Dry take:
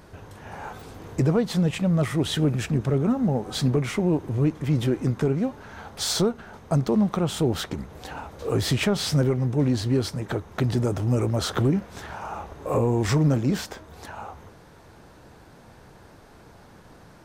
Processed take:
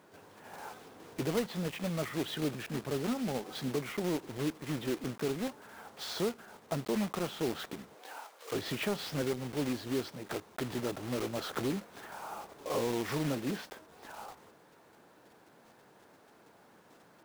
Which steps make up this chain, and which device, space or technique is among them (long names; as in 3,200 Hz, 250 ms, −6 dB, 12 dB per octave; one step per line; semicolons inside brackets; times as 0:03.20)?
early digital voice recorder (band-pass filter 230–3,600 Hz; one scale factor per block 3 bits)
0:07.94–0:08.51: high-pass filter 360 Hz → 1,000 Hz 12 dB per octave
level −8.5 dB